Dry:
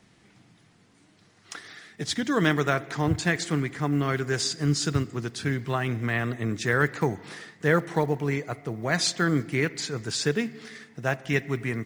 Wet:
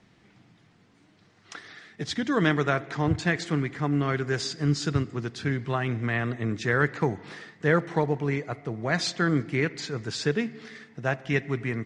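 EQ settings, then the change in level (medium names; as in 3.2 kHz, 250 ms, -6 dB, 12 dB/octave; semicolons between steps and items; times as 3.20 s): distance through air 89 m; 0.0 dB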